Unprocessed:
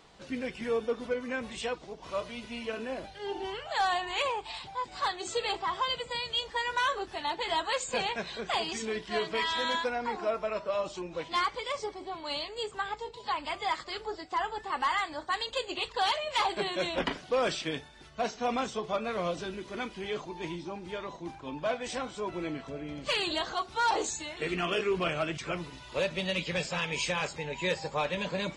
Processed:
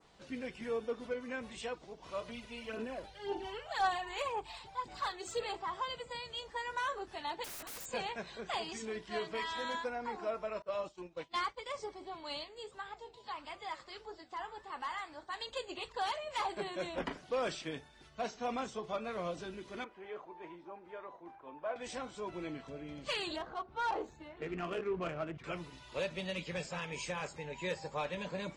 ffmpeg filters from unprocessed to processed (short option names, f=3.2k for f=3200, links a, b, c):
-filter_complex "[0:a]asettb=1/sr,asplit=3[a][b][c];[a]atrim=end=2.284[d];[b]atrim=start=2.28:end=5.44,asetpts=PTS-STARTPTS,afade=t=in:d=0.004:c=qsin,afade=t=out:st=3.156:d=0.004:c=qsin,aphaser=in_gain=1:out_gain=1:delay=2.3:decay=0.47:speed=1.9:type=sinusoidal[e];[c]atrim=start=5.436[f];[d][e]acrossfade=d=0.004:c1=hsin:c2=qsin[g];[g][f]acrossfade=d=0.004:c1=qsin:c2=hsin,asettb=1/sr,asplit=3[h][i][j];[h]atrim=end=7.444[k];[i]atrim=start=7.44:end=7.86,asetpts=PTS-STARTPTS,afade=t=in:d=0.004:c=qsin,afade=t=out:st=0.416:d=0.004:c=qsin,aeval=exprs='(mod(47.3*val(0)+1,2)-1)/47.3':c=same[l];[j]atrim=start=7.856[m];[k][l]acrossfade=d=0.004:c1=hsin:c2=qsin[n];[n][m]acrossfade=d=0.004:c1=qsin:c2=hsin,asettb=1/sr,asplit=3[o][p][q];[o]atrim=end=10.624[r];[p]atrim=start=10.62:end=11.66,asetpts=PTS-STARTPTS,afade=t=in:d=0.004:c=qsin,afade=t=out:st=1.036:d=0.004:c=qsin,agate=range=-33dB:threshold=-35dB:ratio=3:release=100:detection=peak[s];[q]atrim=start=11.656[t];[r][s]acrossfade=d=0.004:c1=hsin:c2=qsin[u];[u][t]acrossfade=d=0.004:c1=qsin:c2=hsin,asplit=3[v][w][x];[v]afade=t=out:st=12.43:d=0.02[y];[w]flanger=delay=5.2:depth=9.5:regen=-84:speed=1.7:shape=triangular,afade=t=in:st=12.43:d=0.02,afade=t=out:st=15.4:d=0.02[z];[x]afade=t=in:st=15.4:d=0.02[aa];[y][z][aa]amix=inputs=3:normalize=0,asettb=1/sr,asplit=3[ab][ac][ad];[ab]atrim=end=19.844[ae];[ac]atrim=start=19.84:end=21.76,asetpts=PTS-STARTPTS,afade=t=in:d=0.004:c=qsin,afade=t=out:st=1.916:d=0.004:c=qsin,acrossover=split=370 2000:gain=0.158 1 0.0794[af][ag][ah];[af][ag][ah]amix=inputs=3:normalize=0[ai];[ad]atrim=start=21.756[aj];[ae][ai]acrossfade=d=0.004:c1=hsin:c2=qsin[ak];[ak][aj]acrossfade=d=0.004:c1=qsin:c2=hsin,asettb=1/sr,asplit=3[al][am][an];[al]atrim=end=23.364[ao];[am]atrim=start=23.36:end=25.44,asetpts=PTS-STARTPTS,afade=t=in:d=0.004:c=qsin,afade=t=out:st=2.076:d=0.004:c=qsin,adynamicsmooth=sensitivity=1.5:basefreq=1.3k[ap];[an]atrim=start=25.436[aq];[ao][ap]acrossfade=d=0.004:c1=hsin:c2=qsin[ar];[ar][aq]acrossfade=d=0.004:c1=qsin:c2=hsin,adynamicequalizer=threshold=0.00501:dfrequency=3500:dqfactor=1:tfrequency=3500:tqfactor=1:attack=5:release=100:ratio=0.375:range=3.5:mode=cutabove:tftype=bell,volume=-6.5dB"